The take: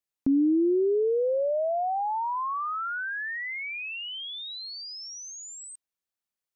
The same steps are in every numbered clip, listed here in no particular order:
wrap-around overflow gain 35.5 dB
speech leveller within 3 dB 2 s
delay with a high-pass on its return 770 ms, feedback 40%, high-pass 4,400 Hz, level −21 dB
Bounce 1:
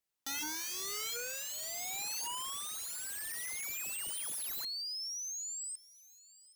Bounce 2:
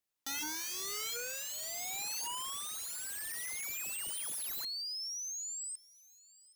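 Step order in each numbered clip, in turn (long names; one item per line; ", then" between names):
wrap-around overflow, then delay with a high-pass on its return, then speech leveller
wrap-around overflow, then speech leveller, then delay with a high-pass on its return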